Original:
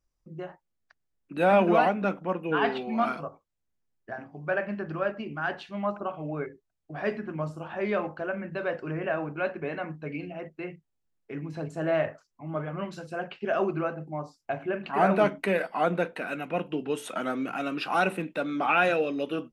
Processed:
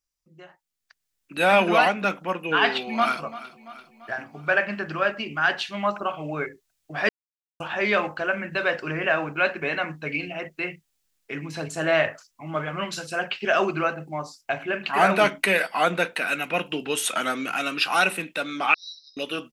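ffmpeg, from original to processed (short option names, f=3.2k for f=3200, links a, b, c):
-filter_complex "[0:a]asplit=2[a][b];[b]afade=t=in:st=2.76:d=0.01,afade=t=out:st=3.22:d=0.01,aecho=0:1:340|680|1020|1360|1700:0.149624|0.082293|0.0452611|0.0248936|0.0136915[c];[a][c]amix=inputs=2:normalize=0,asettb=1/sr,asplit=3[d][e][f];[d]atrim=end=18.744[g];[e]atrim=start=18.74:end=19.17,asetpts=PTS-STARTPTS,afade=t=in:d=0.004:c=qsin,afade=t=out:st=0.426:d=0.004:c=qsin,asuperpass=centerf=4800:order=20:qfactor=2.4[h];[f]atrim=start=19.166[i];[g][h]acrossfade=d=0.004:c1=hsin:c2=qsin[j];[j][i]acrossfade=d=0.004:c1=qsin:c2=hsin,asplit=3[k][l][m];[k]atrim=end=7.09,asetpts=PTS-STARTPTS,afade=t=out:st=7.086:d=0.004:c=hsin[n];[l]atrim=start=7.09:end=7.6,asetpts=PTS-STARTPTS,volume=0[o];[m]atrim=start=7.6,asetpts=PTS-STARTPTS,afade=t=in:d=0.004:c=hsin[p];[n][o][p]concat=n=3:v=0:a=1,tiltshelf=f=1.4k:g=-9,dynaudnorm=f=150:g=13:m=14.5dB,volume=-4dB"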